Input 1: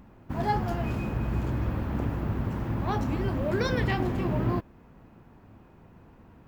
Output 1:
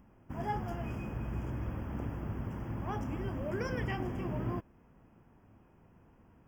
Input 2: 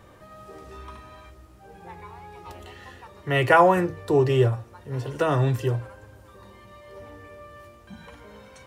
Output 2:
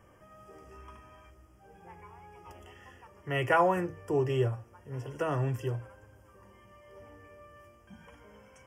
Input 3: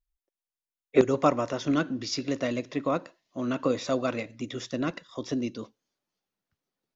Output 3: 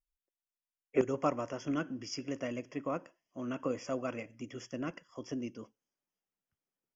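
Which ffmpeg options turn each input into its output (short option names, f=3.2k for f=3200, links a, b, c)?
-af "asuperstop=centerf=4000:order=20:qfactor=2.9,volume=-8.5dB"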